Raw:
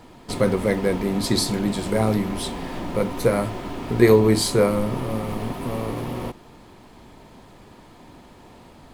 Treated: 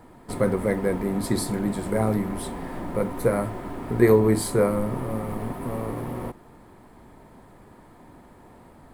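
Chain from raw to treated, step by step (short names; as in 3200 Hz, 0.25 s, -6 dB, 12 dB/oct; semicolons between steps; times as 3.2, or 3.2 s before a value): band shelf 4100 Hz -9.5 dB; gain -2.5 dB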